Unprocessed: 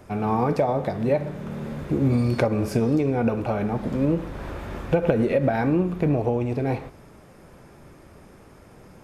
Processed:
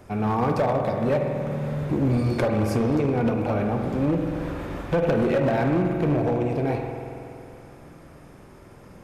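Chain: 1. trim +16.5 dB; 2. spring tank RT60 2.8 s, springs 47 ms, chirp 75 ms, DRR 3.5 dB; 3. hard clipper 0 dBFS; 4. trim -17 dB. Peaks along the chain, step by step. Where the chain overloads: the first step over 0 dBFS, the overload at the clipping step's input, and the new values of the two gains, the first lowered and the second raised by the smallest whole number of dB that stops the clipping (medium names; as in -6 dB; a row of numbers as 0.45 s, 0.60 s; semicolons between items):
+9.5 dBFS, +9.0 dBFS, 0.0 dBFS, -17.0 dBFS; step 1, 9.0 dB; step 1 +7.5 dB, step 4 -8 dB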